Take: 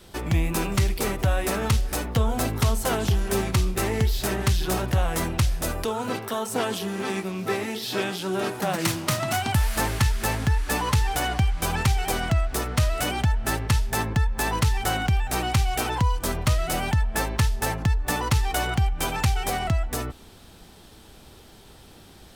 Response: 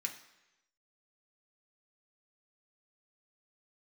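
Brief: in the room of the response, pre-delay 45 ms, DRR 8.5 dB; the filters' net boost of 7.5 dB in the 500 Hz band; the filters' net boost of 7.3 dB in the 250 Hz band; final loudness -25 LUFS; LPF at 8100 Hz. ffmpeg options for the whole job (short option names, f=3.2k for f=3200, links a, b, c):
-filter_complex "[0:a]lowpass=8.1k,equalizer=f=250:t=o:g=8,equalizer=f=500:t=o:g=7,asplit=2[a][b];[1:a]atrim=start_sample=2205,adelay=45[c];[b][c]afir=irnorm=-1:irlink=0,volume=-8.5dB[d];[a][d]amix=inputs=2:normalize=0,volume=-3dB"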